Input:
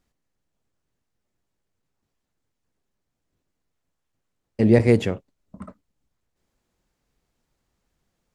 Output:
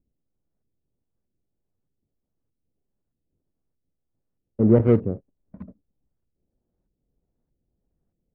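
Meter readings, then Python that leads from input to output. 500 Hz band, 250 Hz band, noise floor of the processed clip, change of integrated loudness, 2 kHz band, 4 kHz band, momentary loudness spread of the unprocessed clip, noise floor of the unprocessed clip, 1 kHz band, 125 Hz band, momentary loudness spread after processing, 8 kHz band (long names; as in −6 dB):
−1.0 dB, −0.5 dB, −81 dBFS, −0.5 dB, −14.0 dB, below −20 dB, 14 LU, −79 dBFS, −2.0 dB, 0.0 dB, 16 LU, can't be measured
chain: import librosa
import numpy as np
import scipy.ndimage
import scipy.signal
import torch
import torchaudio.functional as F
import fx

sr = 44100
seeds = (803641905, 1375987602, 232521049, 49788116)

y = scipy.ndimage.median_filter(x, 41, mode='constant')
y = fx.filter_lfo_lowpass(y, sr, shape='saw_up', hz=1.6, low_hz=370.0, high_hz=1700.0, q=0.8)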